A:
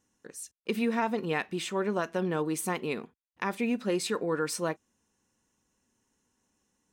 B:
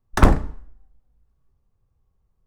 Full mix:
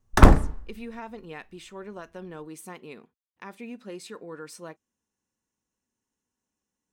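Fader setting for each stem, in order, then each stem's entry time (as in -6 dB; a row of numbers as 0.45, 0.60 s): -10.5, +1.0 dB; 0.00, 0.00 s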